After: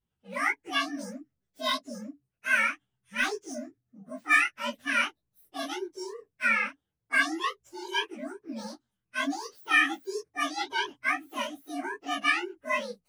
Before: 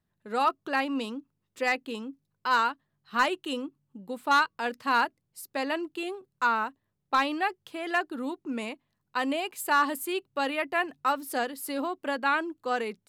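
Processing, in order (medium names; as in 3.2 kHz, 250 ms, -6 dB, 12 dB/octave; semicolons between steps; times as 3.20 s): frequency axis rescaled in octaves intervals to 130%; dynamic bell 2 kHz, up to +7 dB, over -42 dBFS, Q 1.1; detune thickener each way 59 cents; trim +2.5 dB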